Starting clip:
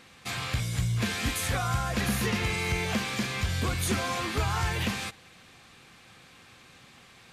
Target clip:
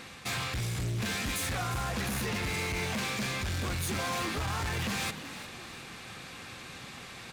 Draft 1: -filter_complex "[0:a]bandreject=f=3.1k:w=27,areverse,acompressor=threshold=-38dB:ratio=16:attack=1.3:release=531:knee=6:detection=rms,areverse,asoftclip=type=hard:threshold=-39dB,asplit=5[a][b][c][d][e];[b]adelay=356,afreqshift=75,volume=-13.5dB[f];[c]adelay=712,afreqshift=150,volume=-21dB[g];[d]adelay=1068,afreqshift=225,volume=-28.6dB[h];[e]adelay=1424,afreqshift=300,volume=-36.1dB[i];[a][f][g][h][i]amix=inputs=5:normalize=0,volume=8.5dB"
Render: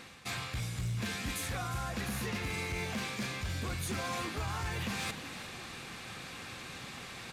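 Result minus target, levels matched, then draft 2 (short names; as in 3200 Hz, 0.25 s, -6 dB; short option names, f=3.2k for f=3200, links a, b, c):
compressor: peak gain reduction +7.5 dB
-filter_complex "[0:a]bandreject=f=3.1k:w=27,areverse,acompressor=threshold=-30dB:ratio=16:attack=1.3:release=531:knee=6:detection=rms,areverse,asoftclip=type=hard:threshold=-39dB,asplit=5[a][b][c][d][e];[b]adelay=356,afreqshift=75,volume=-13.5dB[f];[c]adelay=712,afreqshift=150,volume=-21dB[g];[d]adelay=1068,afreqshift=225,volume=-28.6dB[h];[e]adelay=1424,afreqshift=300,volume=-36.1dB[i];[a][f][g][h][i]amix=inputs=5:normalize=0,volume=8.5dB"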